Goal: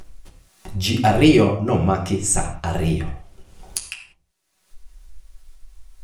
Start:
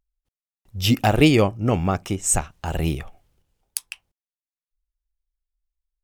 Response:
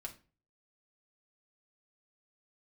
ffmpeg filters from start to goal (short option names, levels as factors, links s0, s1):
-filter_complex "[0:a]acompressor=mode=upward:threshold=0.112:ratio=2.5[s0];[1:a]atrim=start_sample=2205,afade=t=out:st=0.15:d=0.01,atrim=end_sample=7056,asetrate=22050,aresample=44100[s1];[s0][s1]afir=irnorm=-1:irlink=0"